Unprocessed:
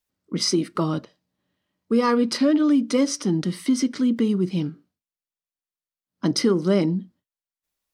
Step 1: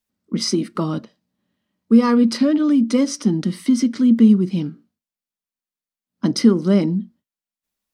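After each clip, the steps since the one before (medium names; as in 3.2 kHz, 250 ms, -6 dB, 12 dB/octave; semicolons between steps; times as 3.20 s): peaking EQ 220 Hz +12 dB 0.32 oct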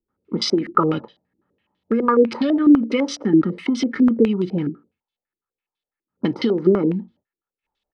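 comb 2.3 ms, depth 49%; compression, threshold -18 dBFS, peak gain reduction 8 dB; step-sequenced low-pass 12 Hz 340–3500 Hz; trim +1.5 dB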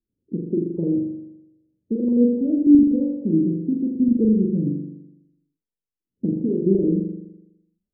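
Gaussian low-pass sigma 23 samples; on a send: flutter echo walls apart 7.1 m, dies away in 0.91 s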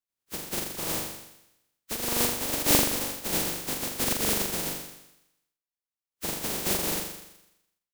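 spectral contrast reduction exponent 0.13; trim -9 dB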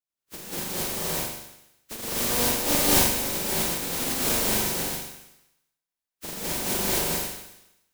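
gated-style reverb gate 290 ms rising, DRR -7.5 dB; trim -5 dB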